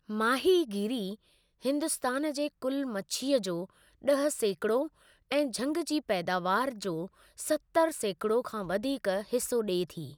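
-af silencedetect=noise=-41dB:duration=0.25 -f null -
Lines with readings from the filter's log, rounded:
silence_start: 1.14
silence_end: 1.64 | silence_duration: 0.50
silence_start: 3.65
silence_end: 4.04 | silence_duration: 0.39
silence_start: 4.87
silence_end: 5.31 | silence_duration: 0.43
silence_start: 7.06
silence_end: 7.38 | silence_duration: 0.32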